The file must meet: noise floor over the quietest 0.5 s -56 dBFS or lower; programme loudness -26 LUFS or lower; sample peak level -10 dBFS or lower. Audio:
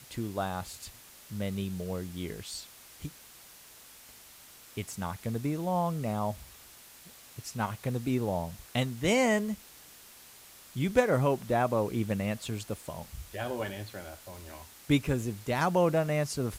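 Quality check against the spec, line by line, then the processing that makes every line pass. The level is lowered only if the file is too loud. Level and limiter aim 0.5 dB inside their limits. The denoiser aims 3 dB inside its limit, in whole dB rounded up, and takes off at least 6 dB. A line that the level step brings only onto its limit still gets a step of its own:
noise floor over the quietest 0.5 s -53 dBFS: fail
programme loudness -31.5 LUFS: pass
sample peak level -11.5 dBFS: pass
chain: noise reduction 6 dB, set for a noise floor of -53 dBFS

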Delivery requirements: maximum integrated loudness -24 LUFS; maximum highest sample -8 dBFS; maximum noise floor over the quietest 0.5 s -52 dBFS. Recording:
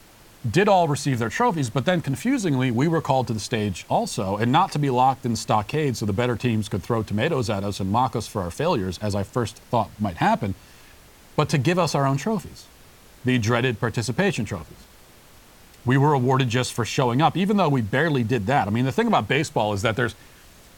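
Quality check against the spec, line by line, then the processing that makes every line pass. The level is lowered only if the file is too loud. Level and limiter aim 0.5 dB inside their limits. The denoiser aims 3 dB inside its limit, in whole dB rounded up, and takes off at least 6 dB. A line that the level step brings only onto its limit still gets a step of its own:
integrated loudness -22.5 LUFS: fail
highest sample -5.5 dBFS: fail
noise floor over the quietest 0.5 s -50 dBFS: fail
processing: noise reduction 6 dB, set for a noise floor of -50 dBFS; trim -2 dB; peak limiter -8.5 dBFS

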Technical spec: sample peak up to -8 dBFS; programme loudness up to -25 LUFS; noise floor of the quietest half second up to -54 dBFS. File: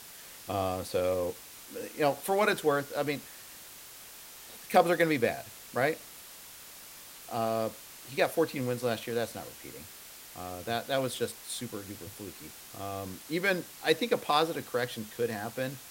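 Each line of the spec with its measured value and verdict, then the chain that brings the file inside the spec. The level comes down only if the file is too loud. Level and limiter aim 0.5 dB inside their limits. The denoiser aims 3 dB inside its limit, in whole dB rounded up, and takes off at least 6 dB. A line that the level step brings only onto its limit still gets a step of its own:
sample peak -10.5 dBFS: pass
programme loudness -31.0 LUFS: pass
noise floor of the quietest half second -49 dBFS: fail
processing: noise reduction 8 dB, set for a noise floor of -49 dBFS

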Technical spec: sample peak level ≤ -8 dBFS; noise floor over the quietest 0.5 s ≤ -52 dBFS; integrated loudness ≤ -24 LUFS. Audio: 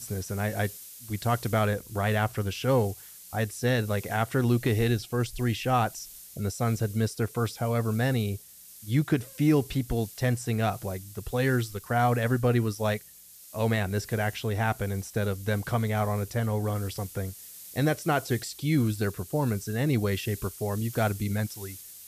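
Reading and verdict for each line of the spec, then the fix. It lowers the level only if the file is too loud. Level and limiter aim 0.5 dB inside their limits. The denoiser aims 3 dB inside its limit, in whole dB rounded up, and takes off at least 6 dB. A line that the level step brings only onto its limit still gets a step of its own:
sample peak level -12.5 dBFS: pass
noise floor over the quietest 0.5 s -50 dBFS: fail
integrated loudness -28.5 LUFS: pass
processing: noise reduction 6 dB, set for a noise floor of -50 dBFS

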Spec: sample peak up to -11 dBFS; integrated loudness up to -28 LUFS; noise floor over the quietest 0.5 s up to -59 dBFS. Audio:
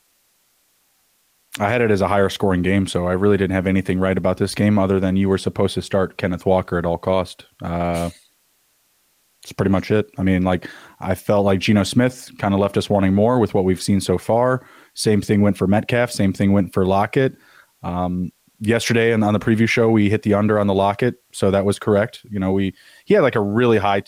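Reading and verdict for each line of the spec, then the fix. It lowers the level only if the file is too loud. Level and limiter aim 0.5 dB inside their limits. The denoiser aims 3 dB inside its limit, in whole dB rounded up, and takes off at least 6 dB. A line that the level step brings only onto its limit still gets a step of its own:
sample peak -5.0 dBFS: fail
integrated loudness -18.5 LUFS: fail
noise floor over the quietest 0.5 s -62 dBFS: pass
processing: trim -10 dB

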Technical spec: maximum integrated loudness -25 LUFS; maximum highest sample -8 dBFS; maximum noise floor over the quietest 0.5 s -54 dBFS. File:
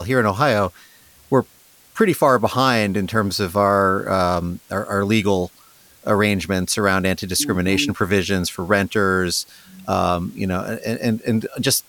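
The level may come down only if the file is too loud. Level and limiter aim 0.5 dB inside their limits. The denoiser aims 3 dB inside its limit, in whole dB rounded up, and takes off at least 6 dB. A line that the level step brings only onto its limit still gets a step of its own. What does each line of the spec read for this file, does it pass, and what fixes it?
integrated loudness -19.5 LUFS: fail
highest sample -3.5 dBFS: fail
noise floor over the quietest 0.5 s -51 dBFS: fail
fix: trim -6 dB

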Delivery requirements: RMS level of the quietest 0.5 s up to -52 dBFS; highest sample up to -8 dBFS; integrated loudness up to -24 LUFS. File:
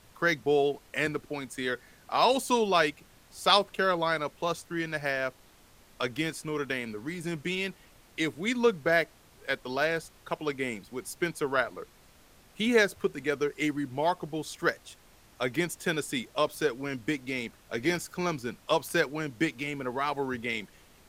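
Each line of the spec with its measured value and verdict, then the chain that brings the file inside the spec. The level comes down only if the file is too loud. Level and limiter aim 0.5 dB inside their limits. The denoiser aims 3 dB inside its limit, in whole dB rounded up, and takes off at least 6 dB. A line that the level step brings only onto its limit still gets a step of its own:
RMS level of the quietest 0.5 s -58 dBFS: pass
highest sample -7.0 dBFS: fail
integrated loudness -30.0 LUFS: pass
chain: peak limiter -8.5 dBFS

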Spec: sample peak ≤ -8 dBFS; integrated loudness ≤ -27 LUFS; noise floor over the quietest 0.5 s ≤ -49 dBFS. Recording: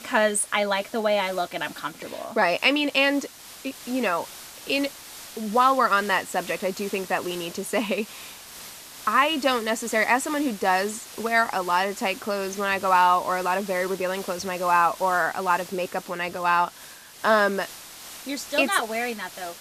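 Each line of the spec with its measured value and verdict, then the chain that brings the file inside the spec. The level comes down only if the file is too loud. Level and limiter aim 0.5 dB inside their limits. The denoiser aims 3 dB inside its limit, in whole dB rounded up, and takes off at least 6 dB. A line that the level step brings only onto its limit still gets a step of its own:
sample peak -6.0 dBFS: fail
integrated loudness -24.0 LUFS: fail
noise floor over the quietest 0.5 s -45 dBFS: fail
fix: noise reduction 6 dB, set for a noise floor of -45 dBFS; trim -3.5 dB

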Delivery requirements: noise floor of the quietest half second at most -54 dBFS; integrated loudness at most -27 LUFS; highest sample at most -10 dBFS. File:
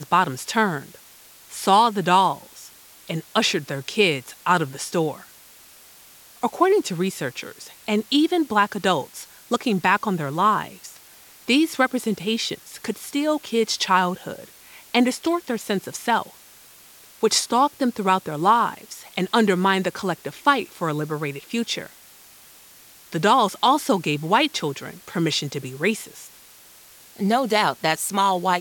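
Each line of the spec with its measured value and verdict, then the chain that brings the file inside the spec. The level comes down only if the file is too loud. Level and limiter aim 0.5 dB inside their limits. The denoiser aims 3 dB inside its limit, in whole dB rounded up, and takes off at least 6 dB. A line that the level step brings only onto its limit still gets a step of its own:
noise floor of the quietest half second -49 dBFS: fail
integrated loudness -22.0 LUFS: fail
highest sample -5.0 dBFS: fail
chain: trim -5.5 dB

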